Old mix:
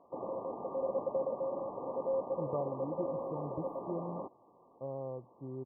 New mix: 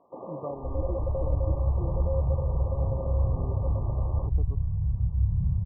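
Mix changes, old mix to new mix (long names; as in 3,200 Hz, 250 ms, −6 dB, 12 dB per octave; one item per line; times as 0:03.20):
speech: entry −2.10 s
second sound: unmuted
reverb: on, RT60 1.1 s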